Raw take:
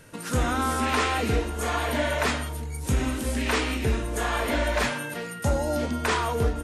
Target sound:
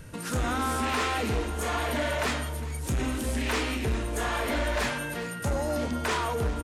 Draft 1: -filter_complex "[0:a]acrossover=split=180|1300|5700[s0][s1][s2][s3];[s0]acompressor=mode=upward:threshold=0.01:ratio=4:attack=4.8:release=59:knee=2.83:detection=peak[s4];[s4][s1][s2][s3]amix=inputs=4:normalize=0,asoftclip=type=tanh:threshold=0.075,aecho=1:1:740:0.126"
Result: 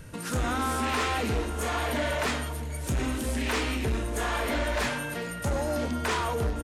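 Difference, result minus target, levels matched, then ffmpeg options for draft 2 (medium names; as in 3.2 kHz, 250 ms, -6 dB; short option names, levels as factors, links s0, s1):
echo 336 ms late
-filter_complex "[0:a]acrossover=split=180|1300|5700[s0][s1][s2][s3];[s0]acompressor=mode=upward:threshold=0.01:ratio=4:attack=4.8:release=59:knee=2.83:detection=peak[s4];[s4][s1][s2][s3]amix=inputs=4:normalize=0,asoftclip=type=tanh:threshold=0.075,aecho=1:1:404:0.126"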